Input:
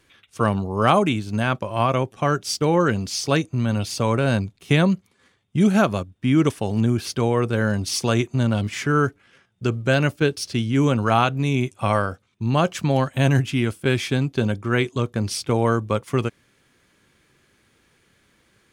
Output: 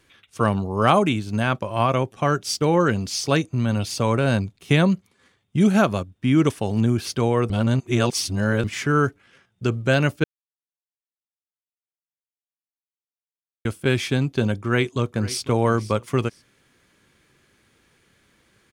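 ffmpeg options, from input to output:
ffmpeg -i in.wav -filter_complex "[0:a]asplit=2[link_01][link_02];[link_02]afade=type=in:start_time=14.59:duration=0.01,afade=type=out:start_time=15.47:duration=0.01,aecho=0:1:500|1000:0.158489|0.0396223[link_03];[link_01][link_03]amix=inputs=2:normalize=0,asplit=5[link_04][link_05][link_06][link_07][link_08];[link_04]atrim=end=7.502[link_09];[link_05]atrim=start=7.498:end=8.642,asetpts=PTS-STARTPTS,areverse[link_10];[link_06]atrim=start=8.638:end=10.24,asetpts=PTS-STARTPTS,afade=type=out:start_time=1.598:duration=0.004:curve=hsin[link_11];[link_07]atrim=start=10.24:end=13.65,asetpts=PTS-STARTPTS,volume=0[link_12];[link_08]atrim=start=13.65,asetpts=PTS-STARTPTS,afade=type=in:duration=0.004:curve=hsin[link_13];[link_09][link_10]acrossfade=duration=0.004:curve1=hsin:curve2=hsin[link_14];[link_11][link_12][link_13]concat=n=3:v=0:a=1[link_15];[link_14][link_15]acrossfade=duration=0.004:curve1=hsin:curve2=hsin" out.wav

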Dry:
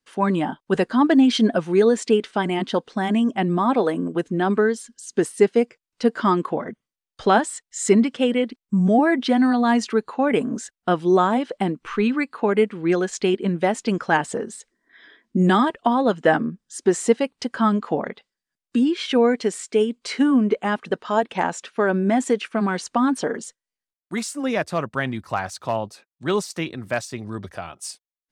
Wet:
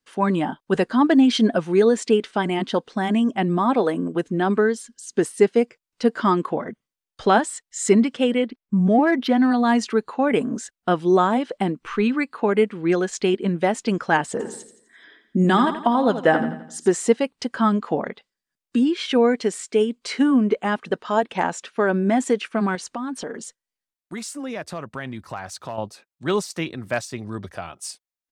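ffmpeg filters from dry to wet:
ffmpeg -i in.wav -filter_complex "[0:a]asettb=1/sr,asplit=3[link_01][link_02][link_03];[link_01]atrim=end=8.464[link_04];[link_02]atrim=start=8.46:end=9.51,asetpts=PTS-STARTPTS,afade=type=in:duration=0.004:curve=qsin,afade=type=out:start_time=1.046:duration=0.004:curve=qsin,adynamicsmooth=sensitivity=1.5:basefreq=4500[link_05];[link_03]atrim=start=9.506[link_06];[link_04][link_05]acrossfade=duration=0.004:curve1=hsin:curve2=qsin[link_07];[link_07][link_06]acrossfade=duration=0.004:curve1=qsin:curve2=hsin,asplit=3[link_08][link_09][link_10];[link_08]afade=type=out:start_time=14.39:duration=0.02[link_11];[link_09]aecho=1:1:85|170|255|340|425:0.282|0.127|0.0571|0.0257|0.0116,afade=type=in:start_time=14.39:duration=0.02,afade=type=out:start_time=16.91:duration=0.02[link_12];[link_10]afade=type=in:start_time=16.91:duration=0.02[link_13];[link_11][link_12][link_13]amix=inputs=3:normalize=0,asettb=1/sr,asplit=3[link_14][link_15][link_16];[link_14]atrim=end=22.754[link_17];[link_15]atrim=start=22.75:end=25.78,asetpts=PTS-STARTPTS,afade=type=in:duration=0.004:curve=qsin,afade=type=out:start_time=3.026:duration=0.004:curve=qsin,acompressor=threshold=-30dB:ratio=2.5:attack=3.2:release=140:knee=1:detection=peak[link_18];[link_16]atrim=start=25.776[link_19];[link_17][link_18]acrossfade=duration=0.004:curve1=hsin:curve2=qsin[link_20];[link_20][link_19]acrossfade=duration=0.004:curve1=qsin:curve2=hsin" out.wav

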